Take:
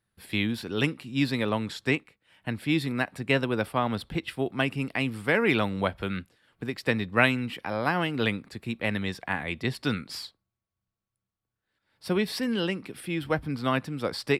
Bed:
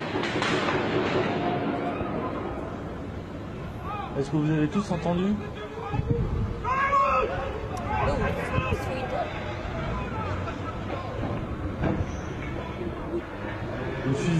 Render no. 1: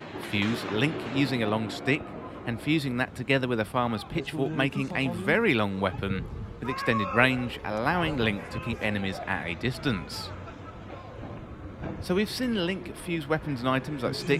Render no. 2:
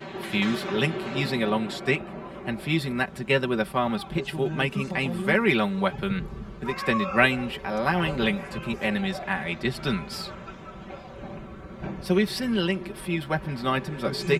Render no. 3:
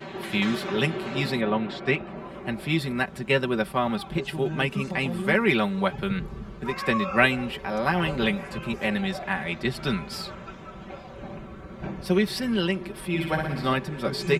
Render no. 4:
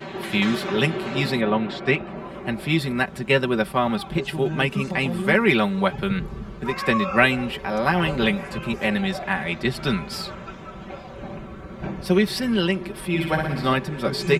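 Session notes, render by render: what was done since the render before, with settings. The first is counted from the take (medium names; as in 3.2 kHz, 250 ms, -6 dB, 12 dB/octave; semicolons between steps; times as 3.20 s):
add bed -9.5 dB
comb 5.2 ms, depth 75%
1.40–2.15 s: low-pass 2.4 kHz -> 6.3 kHz; 13.08–13.74 s: flutter echo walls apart 10.5 m, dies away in 0.85 s
trim +3.5 dB; peak limiter -3 dBFS, peak gain reduction 2 dB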